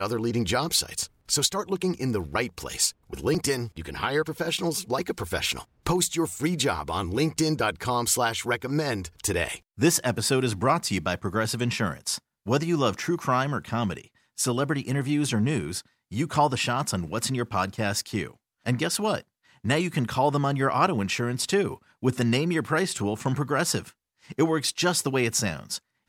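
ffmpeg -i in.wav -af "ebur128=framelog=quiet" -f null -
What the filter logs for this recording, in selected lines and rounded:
Integrated loudness:
  I:         -26.3 LUFS
  Threshold: -36.4 LUFS
Loudness range:
  LRA:         2.3 LU
  Threshold: -46.5 LUFS
  LRA low:   -27.6 LUFS
  LRA high:  -25.3 LUFS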